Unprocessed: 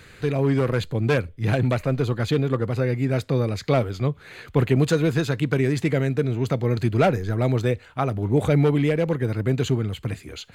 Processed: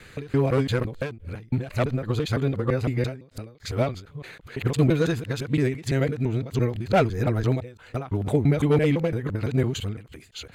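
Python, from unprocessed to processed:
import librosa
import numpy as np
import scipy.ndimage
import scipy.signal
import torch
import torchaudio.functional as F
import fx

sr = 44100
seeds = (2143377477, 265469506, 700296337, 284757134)

y = fx.local_reverse(x, sr, ms=169.0)
y = fx.end_taper(y, sr, db_per_s=130.0)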